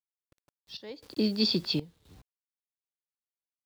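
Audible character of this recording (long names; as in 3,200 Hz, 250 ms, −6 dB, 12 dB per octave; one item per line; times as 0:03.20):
a quantiser's noise floor 10 bits, dither none
sample-and-hold tremolo 3.9 Hz, depth 90%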